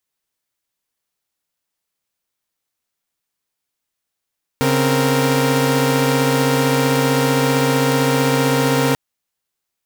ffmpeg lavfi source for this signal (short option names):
-f lavfi -i "aevalsrc='0.158*((2*mod(138.59*t,1)-1)+(2*mod(261.63*t,1)-1)+(2*mod(466.16*t,1)-1))':d=4.34:s=44100"